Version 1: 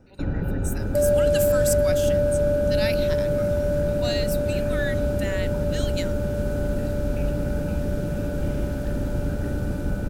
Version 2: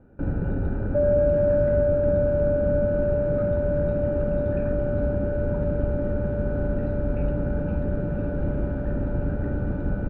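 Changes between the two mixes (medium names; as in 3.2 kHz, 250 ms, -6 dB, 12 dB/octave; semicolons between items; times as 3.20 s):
speech: muted; second sound: add treble shelf 2.1 kHz -10 dB; master: add low-pass 1.7 kHz 12 dB/octave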